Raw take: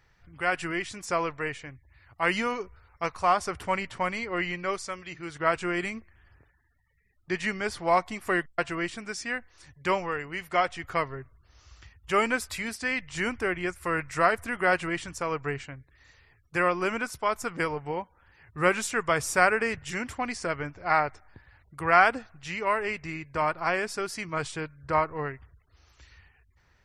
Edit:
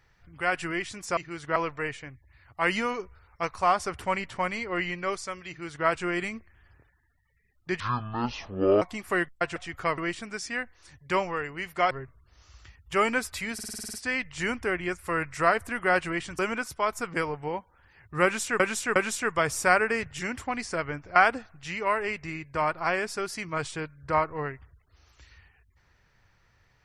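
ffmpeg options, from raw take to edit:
-filter_complex "[0:a]asplit=20[a][b][c][d][e][f][g][h][i][j][k][l][m][n][o][p][q][r][s][t];[a]atrim=end=1.172[u];[b]atrim=start=5.088:end=5.482[v];[c]atrim=start=1.168:end=7.414[w];[d]atrim=start=7.41:end=7.99,asetpts=PTS-STARTPTS,asetrate=25137,aresample=44100[x];[e]atrim=start=7.986:end=8.732[y];[f]atrim=start=10.658:end=11.082[z];[g]atrim=start=8.728:end=10.662[aa];[h]atrim=start=11.078:end=12.762[ab];[i]atrim=start=12.708:end=12.762[ac];[j]atrim=start=12.708:end=12.762[ad];[k]atrim=start=12.708:end=12.762[ae];[l]atrim=start=12.708:end=12.762[af];[m]atrim=start=12.708:end=12.762[ag];[n]atrim=start=12.708:end=12.762[ah];[o]atrim=start=12.708:end=12.762[ai];[p]atrim=start=12.708:end=15.162[aj];[q]atrim=start=16.818:end=19.032[ak];[r]atrim=start=18.668:end=19.032[al];[s]atrim=start=18.668:end=20.872[am];[t]atrim=start=21.958[an];[u][v]acrossfade=d=0.004:c1=hsin:c2=hsin[ao];[ao][w]acrossfade=d=0.004:c1=hsin:c2=hsin[ap];[ap][x]acrossfade=d=0.004:c1=hsin:c2=hsin[aq];[aq][y]acrossfade=d=0.004:c1=hsin:c2=hsin[ar];[ar][z]acrossfade=d=0.004:c1=hsin:c2=hsin[as];[as][aa]acrossfade=d=0.004:c1=hsin:c2=hsin[at];[at][ab]acrossfade=d=0.004:c1=hsin:c2=hsin[au];[au][ac]acrossfade=d=0.004:c1=hsin:c2=hsin[av];[av][ad]acrossfade=d=0.004:c1=hsin:c2=hsin[aw];[aw][ae]acrossfade=d=0.004:c1=hsin:c2=hsin[ax];[ax][af]acrossfade=d=0.004:c1=hsin:c2=hsin[ay];[ay][ag]acrossfade=d=0.004:c1=hsin:c2=hsin[az];[az][ah]acrossfade=d=0.004:c1=hsin:c2=hsin[ba];[ba][ai]acrossfade=d=0.004:c1=hsin:c2=hsin[bb];[bb][aj]acrossfade=d=0.004:c1=hsin:c2=hsin[bc];[bc][ak]acrossfade=d=0.004:c1=hsin:c2=hsin[bd];[bd][al]acrossfade=d=0.004:c1=hsin:c2=hsin[be];[be][am]acrossfade=d=0.004:c1=hsin:c2=hsin[bf];[bf][an]acrossfade=d=0.004:c1=hsin:c2=hsin"

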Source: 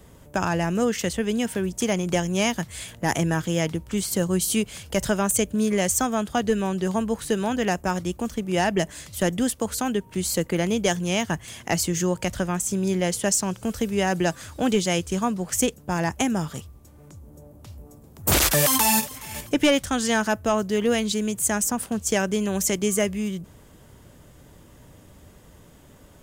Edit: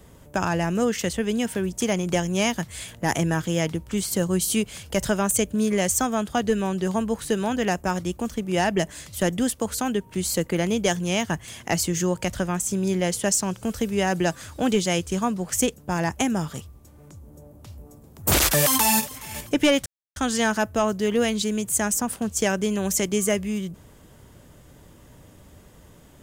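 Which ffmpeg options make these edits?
-filter_complex "[0:a]asplit=2[a][b];[a]atrim=end=19.86,asetpts=PTS-STARTPTS,afade=t=out:st=19.856:d=0.004:c=hsin,apad=pad_dur=0.3[c];[b]atrim=start=19.86,asetpts=PTS-STARTPTS,afade=t=in:d=0.004:c=hsin[d];[c][d]concat=n=2:v=0:a=1"

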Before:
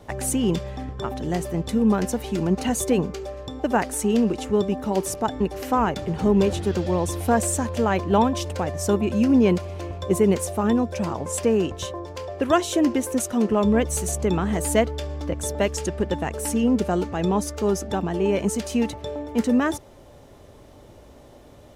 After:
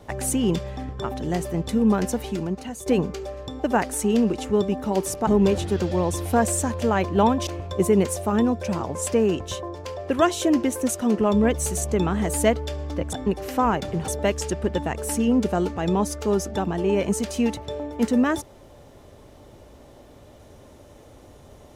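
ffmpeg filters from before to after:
-filter_complex "[0:a]asplit=6[a][b][c][d][e][f];[a]atrim=end=2.86,asetpts=PTS-STARTPTS,afade=t=out:st=2.25:d=0.61:c=qua:silence=0.251189[g];[b]atrim=start=2.86:end=5.272,asetpts=PTS-STARTPTS,afade=t=in:d=0.004:c=hsin:silence=0.251189[h];[c]atrim=start=6.218:end=8.422[i];[d]atrim=start=9.778:end=15.442[j];[e]atrim=start=5.268:end=6.222[k];[f]atrim=start=15.438[l];[g][h]concat=n=2:v=0:a=1[m];[m][i]acrossfade=d=0.004:c1=hsin:c2=hsin[n];[n][j]acrossfade=d=0.004:c1=hsin:c2=hsin[o];[o][k]acrossfade=d=0.004:c1=hsin:c2=hsin[p];[p][l]acrossfade=d=0.004:c1=hsin:c2=hsin"

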